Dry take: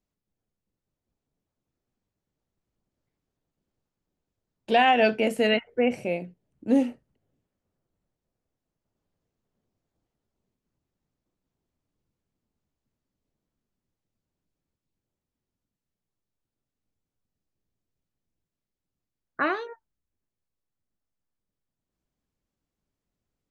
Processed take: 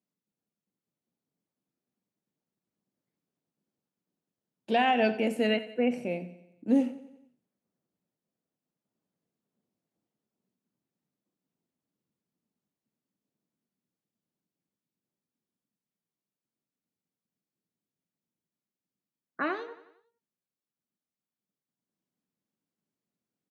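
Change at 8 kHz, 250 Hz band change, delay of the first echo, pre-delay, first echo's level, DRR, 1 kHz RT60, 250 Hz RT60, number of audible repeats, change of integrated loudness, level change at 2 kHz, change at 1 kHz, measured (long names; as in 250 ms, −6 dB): can't be measured, −2.0 dB, 90 ms, no reverb audible, −16.0 dB, no reverb audible, no reverb audible, no reverb audible, 4, −4.0 dB, −6.0 dB, −5.5 dB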